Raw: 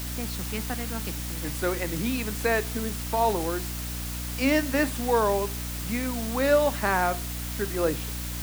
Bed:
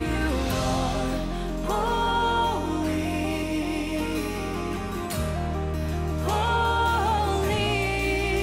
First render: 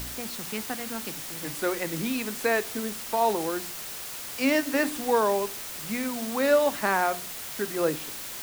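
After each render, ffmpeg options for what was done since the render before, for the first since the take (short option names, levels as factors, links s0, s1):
-af "bandreject=f=60:t=h:w=4,bandreject=f=120:t=h:w=4,bandreject=f=180:t=h:w=4,bandreject=f=240:t=h:w=4,bandreject=f=300:t=h:w=4"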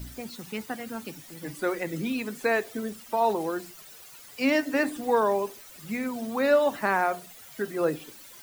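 -af "afftdn=nr=14:nf=-38"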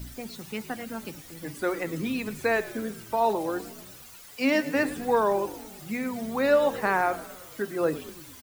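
-filter_complex "[0:a]asplit=7[s0][s1][s2][s3][s4][s5][s6];[s1]adelay=111,afreqshift=-54,volume=0.141[s7];[s2]adelay=222,afreqshift=-108,volume=0.0902[s8];[s3]adelay=333,afreqshift=-162,volume=0.0575[s9];[s4]adelay=444,afreqshift=-216,volume=0.0372[s10];[s5]adelay=555,afreqshift=-270,volume=0.0237[s11];[s6]adelay=666,afreqshift=-324,volume=0.0151[s12];[s0][s7][s8][s9][s10][s11][s12]amix=inputs=7:normalize=0"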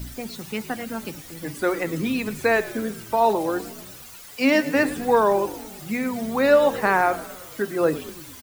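-af "volume=1.78"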